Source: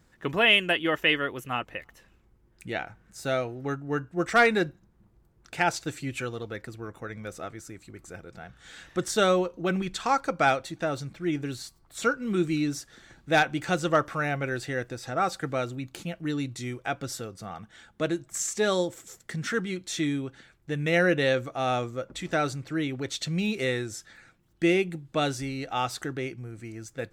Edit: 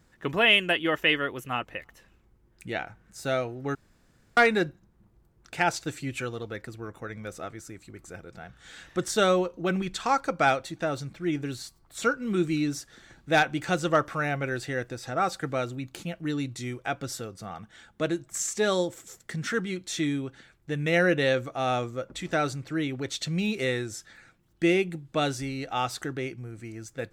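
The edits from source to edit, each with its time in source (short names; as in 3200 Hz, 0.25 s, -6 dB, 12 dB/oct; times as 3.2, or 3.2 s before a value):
3.75–4.37 room tone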